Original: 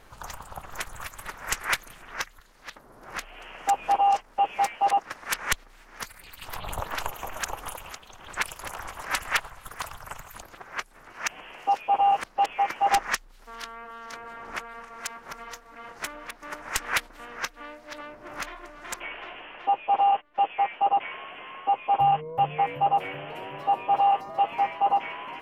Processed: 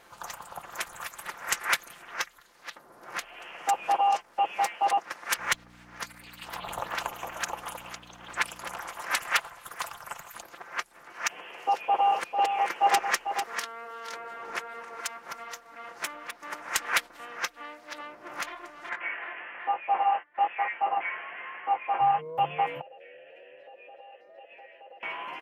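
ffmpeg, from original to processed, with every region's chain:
ffmpeg -i in.wav -filter_complex "[0:a]asettb=1/sr,asplit=3[link_01][link_02][link_03];[link_01]atrim=end=5.384[link_04];[link_02]atrim=start=5.38:end=8.79,asetpts=PTS-STARTPTS,afade=type=in:duration=0.004:curve=qsin,afade=type=out:start_time=3.406:duration=0.004:curve=qsin,highshelf=frequency=10000:gain=-9,acrusher=bits=9:mode=log:mix=0:aa=0.000001,aeval=exprs='val(0)+0.00708*(sin(2*PI*60*n/s)+sin(2*PI*2*60*n/s)/2+sin(2*PI*3*60*n/s)/3+sin(2*PI*4*60*n/s)/4+sin(2*PI*5*60*n/s)/5)':channel_layout=same[link_05];[link_03]atrim=start=8.786[link_06];[link_04][link_05]acrossfade=duration=0.004:curve1=hsin:curve2=qsin[link_07];[link_07][link_06]acrossfade=duration=0.004:curve1=qsin:curve2=hsin,asettb=1/sr,asplit=3[link_08][link_09][link_10];[link_08]atrim=end=11.324[link_11];[link_09]atrim=start=11.32:end=15.01,asetpts=PTS-STARTPTS,afade=type=in:duration=0.004:curve=qsin,afade=type=out:start_time=3.686:duration=0.004:curve=qsin,equalizer=frequency=430:width=3.8:gain=7,aecho=1:1:447:0.447,atrim=end_sample=162729[link_12];[link_10]atrim=start=15.006[link_13];[link_11][link_12]acrossfade=duration=0.004:curve1=hsin:curve2=qsin[link_14];[link_14][link_13]acrossfade=duration=0.004:curve1=qsin:curve2=hsin,asettb=1/sr,asplit=3[link_15][link_16][link_17];[link_15]atrim=end=18.894[link_18];[link_16]atrim=start=18.89:end=22.19,asetpts=PTS-STARTPTS,afade=type=in:duration=0.004:curve=qsin,afade=type=out:start_time=3.296:duration=0.004:curve=qsin,flanger=delay=18:depth=4.7:speed=1.1,lowpass=frequency=1900:width_type=q:width=3.3[link_19];[link_17]atrim=start=22.186[link_20];[link_18][link_19]acrossfade=duration=0.004:curve1=hsin:curve2=qsin[link_21];[link_21][link_20]acrossfade=duration=0.004:curve1=qsin:curve2=hsin,asettb=1/sr,asplit=3[link_22][link_23][link_24];[link_22]atrim=end=22.814[link_25];[link_23]atrim=start=22.81:end=25.03,asetpts=PTS-STARTPTS,afade=type=in:duration=0.004:curve=qsin,afade=type=out:start_time=2.216:duration=0.004:curve=qsin,asplit=3[link_26][link_27][link_28];[link_26]bandpass=frequency=530:width_type=q:width=8,volume=0dB[link_29];[link_27]bandpass=frequency=1840:width_type=q:width=8,volume=-6dB[link_30];[link_28]bandpass=frequency=2480:width_type=q:width=8,volume=-9dB[link_31];[link_29][link_30][link_31]amix=inputs=3:normalize=0,acompressor=threshold=-46dB:ratio=3:attack=3.2:release=140:knee=1:detection=peak[link_32];[link_24]atrim=start=25.026[link_33];[link_25][link_32]acrossfade=duration=0.004:curve1=hsin:curve2=qsin[link_34];[link_34][link_33]acrossfade=duration=0.004:curve1=qsin:curve2=hsin,highpass=frequency=360:poles=1,aecho=1:1:5.8:0.33" out.wav

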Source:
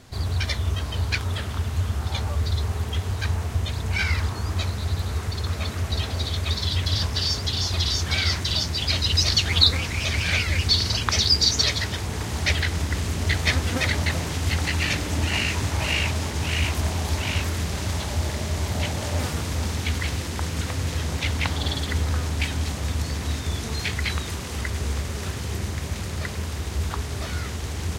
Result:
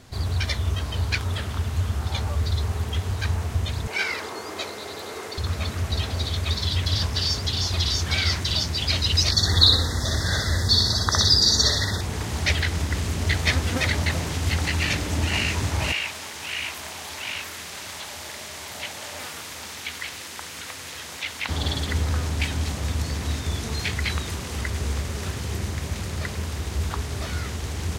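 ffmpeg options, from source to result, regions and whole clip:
ffmpeg -i in.wav -filter_complex "[0:a]asettb=1/sr,asplit=3[link_01][link_02][link_03];[link_01]atrim=end=3.874[link_04];[link_02]atrim=start=3.87:end=5.38,asetpts=PTS-STARTPTS,afade=type=in:duration=0.004:curve=qsin,afade=type=out:start_time=1.506:duration=0.004:curve=qsin,highpass=frequency=400:width_type=q:width=1.8,aeval=exprs='val(0)+0.00398*sin(2*PI*2100*n/s)':channel_layout=same[link_05];[link_03]atrim=start=5.376[link_06];[link_04][link_05]acrossfade=duration=0.004:curve1=hsin:curve2=qsin[link_07];[link_07][link_06]acrossfade=duration=0.004:curve1=qsin:curve2=hsin,asettb=1/sr,asplit=3[link_08][link_09][link_10];[link_08]atrim=end=9.314[link_11];[link_09]atrim=start=9.31:end=12.01,asetpts=PTS-STARTPTS,afade=type=in:duration=0.004:curve=qsin,afade=type=out:start_time=2.696:duration=0.004:curve=qsin,asuperstop=centerf=2600:order=20:qfactor=1.9,aecho=1:1:61|122|183|244|305:0.708|0.283|0.113|0.0453|0.0181,atrim=end_sample=119070[link_12];[link_10]atrim=start=12.006[link_13];[link_11][link_12]acrossfade=duration=0.004:curve1=hsin:curve2=qsin[link_14];[link_14][link_13]acrossfade=duration=0.004:curve1=qsin:curve2=hsin,asettb=1/sr,asplit=3[link_15][link_16][link_17];[link_15]atrim=end=15.924[link_18];[link_16]atrim=start=15.92:end=21.49,asetpts=PTS-STARTPTS,afade=type=in:duration=0.004:curve=qsin,afade=type=out:start_time=5.566:duration=0.004:curve=qsin,acrossover=split=3800[link_19][link_20];[link_20]acompressor=threshold=-41dB:ratio=4:attack=1:release=60[link_21];[link_19][link_21]amix=inputs=2:normalize=0,highpass=frequency=1400:poles=1,highshelf=frequency=8100:gain=8[link_22];[link_17]atrim=start=21.486[link_23];[link_18][link_22]acrossfade=duration=0.004:curve1=hsin:curve2=qsin[link_24];[link_24][link_23]acrossfade=duration=0.004:curve1=qsin:curve2=hsin" out.wav

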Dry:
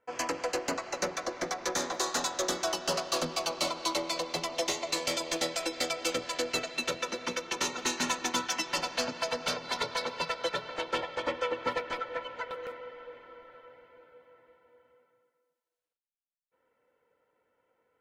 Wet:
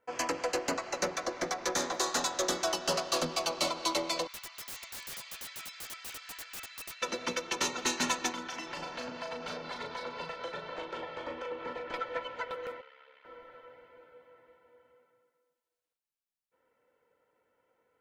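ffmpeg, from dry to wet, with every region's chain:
ffmpeg -i in.wav -filter_complex "[0:a]asettb=1/sr,asplit=3[link_01][link_02][link_03];[link_01]atrim=end=4.274[link_04];[link_02]atrim=start=4.27:end=7.02,asetpts=PTS-STARTPTS,afade=type=in:duration=0.004:curve=qsin,afade=type=out:start_time=2.746:duration=0.004:curve=qsin,highpass=frequency=1400:width=0.5412,highpass=frequency=1400:width=1.3066,highshelf=frequency=2500:gain=-6,aeval=exprs='(mod(66.8*val(0)+1,2)-1)/66.8':channel_layout=same[link_05];[link_03]atrim=start=7.016[link_06];[link_04][link_05]acrossfade=duration=0.004:curve1=hsin:curve2=qsin[link_07];[link_07][link_06]acrossfade=duration=0.004:curve1=qsin:curve2=hsin,asettb=1/sr,asplit=3[link_08][link_09][link_10];[link_08]atrim=end=8.334[link_11];[link_09]atrim=start=8.33:end=11.94,asetpts=PTS-STARTPTS,afade=type=in:duration=0.004:curve=qsin,afade=type=out:start_time=3.606:duration=0.004:curve=qsin,lowpass=frequency=2600:poles=1,acompressor=threshold=-37dB:ratio=4:attack=3.2:release=140:knee=1:detection=peak,asplit=2[link_12][link_13];[link_13]adelay=37,volume=-5dB[link_14];[link_12][link_14]amix=inputs=2:normalize=0,atrim=end_sample=159201[link_15];[link_10]atrim=start=11.936[link_16];[link_11][link_15]acrossfade=duration=0.004:curve1=hsin:curve2=qsin[link_17];[link_17][link_16]acrossfade=duration=0.004:curve1=qsin:curve2=hsin,asettb=1/sr,asplit=3[link_18][link_19][link_20];[link_18]atrim=end=12.814[link_21];[link_19]atrim=start=12.81:end=13.25,asetpts=PTS-STARTPTS,afade=type=in:duration=0.004:curve=qsin,afade=type=out:start_time=0.436:duration=0.004:curve=qsin,bandpass=frequency=3200:width_type=q:width=0.76,aeval=exprs='val(0)*sin(2*PI*34*n/s)':channel_layout=same[link_22];[link_20]atrim=start=13.246[link_23];[link_21][link_22]acrossfade=duration=0.004:curve1=hsin:curve2=qsin[link_24];[link_24][link_23]acrossfade=duration=0.004:curve1=qsin:curve2=hsin" out.wav

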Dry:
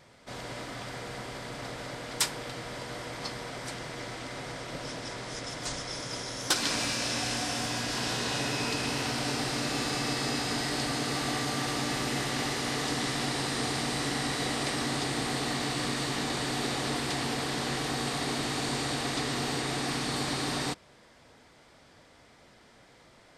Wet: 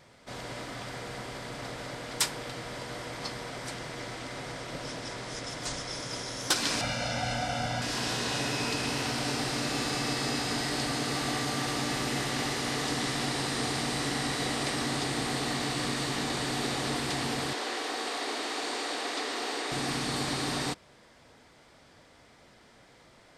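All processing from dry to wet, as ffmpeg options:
ffmpeg -i in.wav -filter_complex "[0:a]asettb=1/sr,asplit=3[link_01][link_02][link_03];[link_01]atrim=end=6.814[link_04];[link_02]atrim=start=6.81:end=7.82,asetpts=PTS-STARTPTS,afade=type=in:duration=0.004:curve=qsin,afade=type=out:start_time=1.006:duration=0.004:curve=qsin,lowpass=frequency=2100:poles=1,aecho=1:1:1.4:0.99,atrim=end_sample=44541[link_05];[link_03]atrim=start=7.816[link_06];[link_04][link_05]acrossfade=duration=0.004:curve1=hsin:curve2=qsin[link_07];[link_07][link_06]acrossfade=duration=0.004:curve1=qsin:curve2=hsin,asettb=1/sr,asplit=3[link_08][link_09][link_10];[link_08]atrim=end=17.534[link_11];[link_09]atrim=start=17.53:end=19.72,asetpts=PTS-STARTPTS,afade=type=in:duration=0.004:curve=qsin,afade=type=out:start_time=2.186:duration=0.004:curve=qsin,highpass=frequency=330:width=0.5412,highpass=frequency=330:width=1.3066,highshelf=frequency=9200:gain=-9[link_12];[link_10]atrim=start=19.716[link_13];[link_11][link_12]acrossfade=duration=0.004:curve1=hsin:curve2=qsin[link_14];[link_14][link_13]acrossfade=duration=0.004:curve1=qsin:curve2=hsin" out.wav

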